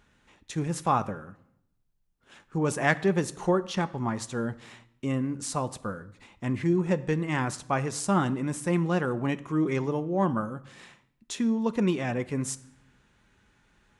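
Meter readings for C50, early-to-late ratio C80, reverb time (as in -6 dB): 18.5 dB, 21.0 dB, 0.75 s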